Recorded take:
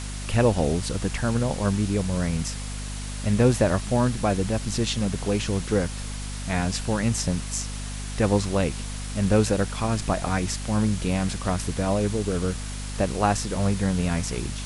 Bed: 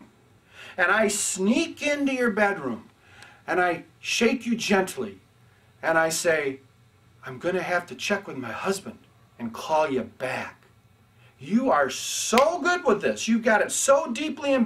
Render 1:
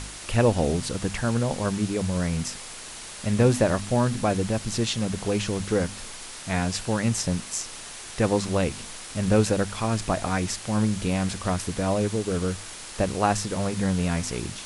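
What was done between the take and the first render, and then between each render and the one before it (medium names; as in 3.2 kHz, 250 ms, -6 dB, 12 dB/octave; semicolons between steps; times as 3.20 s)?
de-hum 50 Hz, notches 5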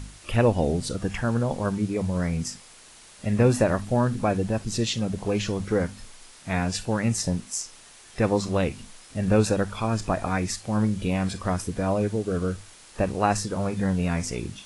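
noise print and reduce 10 dB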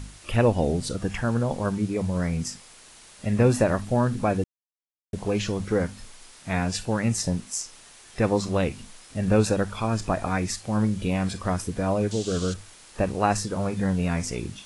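4.44–5.13 s: mute; 12.11–12.54 s: high-order bell 4.8 kHz +14.5 dB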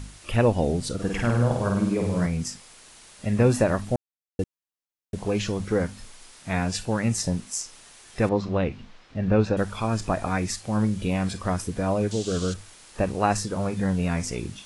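0.94–2.26 s: flutter echo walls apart 8.7 m, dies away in 0.78 s; 3.96–4.39 s: mute; 8.29–9.57 s: distance through air 220 m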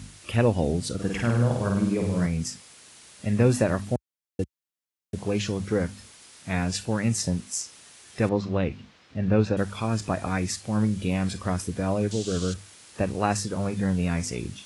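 high-pass 62 Hz 24 dB/octave; peaking EQ 840 Hz -3.5 dB 1.6 oct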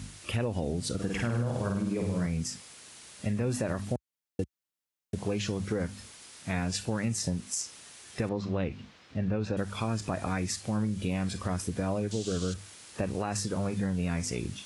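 peak limiter -16 dBFS, peak gain reduction 7 dB; compression 3:1, threshold -28 dBFS, peak gain reduction 6.5 dB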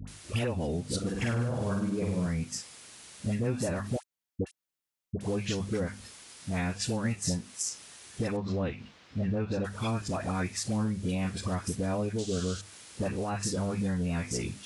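phase dispersion highs, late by 76 ms, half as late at 830 Hz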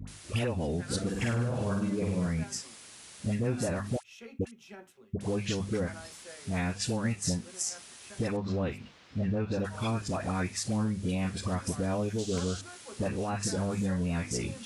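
add bed -27 dB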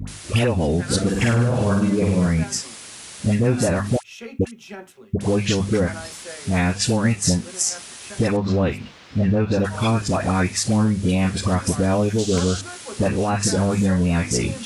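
trim +11.5 dB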